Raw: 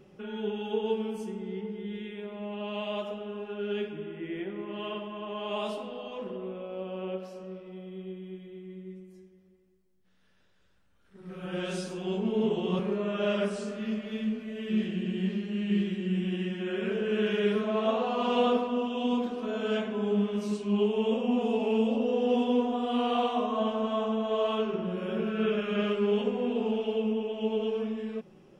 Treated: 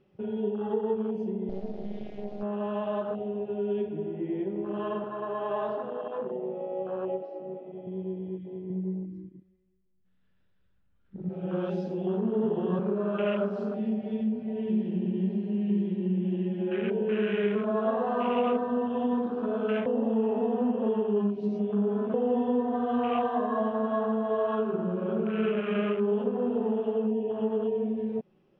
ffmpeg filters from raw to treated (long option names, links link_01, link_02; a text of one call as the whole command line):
ffmpeg -i in.wav -filter_complex "[0:a]asettb=1/sr,asplit=3[link_01][link_02][link_03];[link_01]atrim=end=0.504[link_04];[link_02]atrim=start=0.5:end=0.96,asetpts=PTS-STARTPTS,afade=type=in:duration=0.004:curve=qsin,afade=type=out:start_time=0.456:duration=0.004:curve=qsin,equalizer=frequency=3900:width_type=o:width=2.2:gain=-4[link_05];[link_03]atrim=start=0.956[link_06];[link_04][link_05]acrossfade=duration=0.004:curve1=hsin:curve2=qsin[link_07];[link_07][link_06]acrossfade=duration=0.004:curve1=qsin:curve2=hsin,asettb=1/sr,asplit=3[link_08][link_09][link_10];[link_08]atrim=end=1.494[link_11];[link_09]atrim=start=1.49:end=2.43,asetpts=PTS-STARTPTS,afade=type=in:duration=0.004:curve=qsin,afade=type=out:start_time=0.936:duration=0.004:curve=qsin,acrusher=bits=5:dc=4:mix=0:aa=0.000001[link_12];[link_10]atrim=start=2.426[link_13];[link_11][link_12]acrossfade=duration=0.004:curve1=hsin:curve2=qsin[link_14];[link_14][link_13]acrossfade=duration=0.004:curve1=qsin:curve2=hsin,asettb=1/sr,asplit=3[link_15][link_16][link_17];[link_15]atrim=end=5.044[link_18];[link_16]atrim=start=5.04:end=7.87,asetpts=PTS-STARTPTS,afade=type=in:duration=0.004:curve=qsin,afade=type=out:start_time=2.826:duration=0.004:curve=qsin,highpass=300,lowpass=3400[link_19];[link_17]atrim=start=7.866[link_20];[link_18][link_19]acrossfade=duration=0.004:curve1=hsin:curve2=qsin[link_21];[link_21][link_20]acrossfade=duration=0.004:curve1=qsin:curve2=hsin,asettb=1/sr,asplit=3[link_22][link_23][link_24];[link_22]atrim=end=8.704[link_25];[link_23]atrim=start=8.7:end=11.29,asetpts=PTS-STARTPTS,afade=type=in:duration=0.004:curve=qsin,afade=type=out:start_time=2.586:duration=0.004:curve=qsin,bass=frequency=250:gain=10,treble=frequency=4000:gain=-6[link_26];[link_24]atrim=start=11.286[link_27];[link_25][link_26]acrossfade=duration=0.004:curve1=hsin:curve2=qsin[link_28];[link_28][link_27]acrossfade=duration=0.004:curve1=qsin:curve2=hsin,asplit=3[link_29][link_30][link_31];[link_29]atrim=end=19.862[link_32];[link_30]atrim=start=19.858:end=22.142,asetpts=PTS-STARTPTS,areverse[link_33];[link_31]atrim=start=22.138[link_34];[link_32][link_33]acrossfade=duration=0.004:curve1=hsin:curve2=hsin[link_35];[link_35][link_34]acrossfade=duration=0.004:curve1=hsin:curve2=hsin,afwtdn=0.0141,lowpass=frequency=4800:width=0.5412,lowpass=frequency=4800:width=1.3066,acompressor=threshold=-35dB:ratio=2,volume=6.5dB" out.wav